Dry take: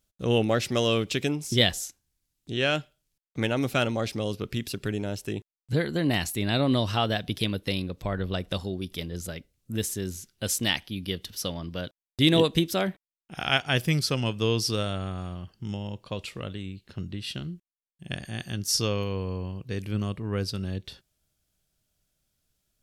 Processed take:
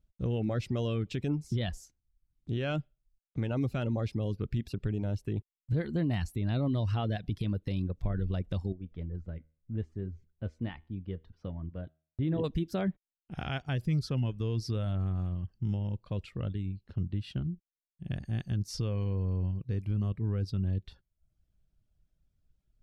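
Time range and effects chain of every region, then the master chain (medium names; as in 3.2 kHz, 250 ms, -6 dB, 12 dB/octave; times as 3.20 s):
8.72–12.44 s: low-pass 1.8 kHz + feedback comb 79 Hz, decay 0.45 s
whole clip: reverb removal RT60 0.52 s; RIAA curve playback; peak limiter -15.5 dBFS; trim -7 dB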